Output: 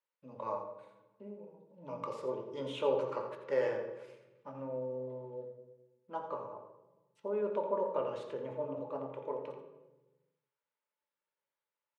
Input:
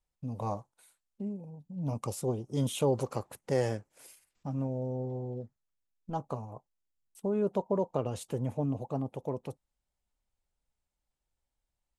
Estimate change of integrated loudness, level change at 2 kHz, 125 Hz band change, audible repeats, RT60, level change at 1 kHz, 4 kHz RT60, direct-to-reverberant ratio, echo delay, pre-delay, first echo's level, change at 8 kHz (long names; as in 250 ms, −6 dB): −3.5 dB, +0.5 dB, −17.5 dB, 1, 1.1 s, −1.0 dB, 0.80 s, 2.0 dB, 85 ms, 3 ms, −9.5 dB, below −20 dB